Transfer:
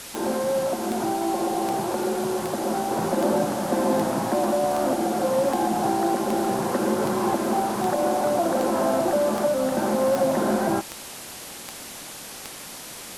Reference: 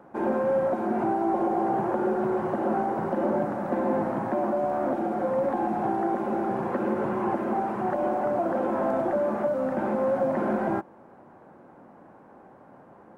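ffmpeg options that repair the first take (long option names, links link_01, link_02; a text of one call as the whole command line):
ffmpeg -i in.wav -af "adeclick=threshold=4,afwtdn=0.014,asetnsamples=nb_out_samples=441:pad=0,asendcmd='2.91 volume volume -3.5dB',volume=0dB" out.wav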